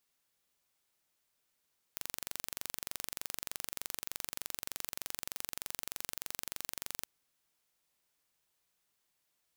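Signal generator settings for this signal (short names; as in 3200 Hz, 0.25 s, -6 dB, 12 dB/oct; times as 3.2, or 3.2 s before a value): pulse train 23.3/s, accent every 0, -10.5 dBFS 5.08 s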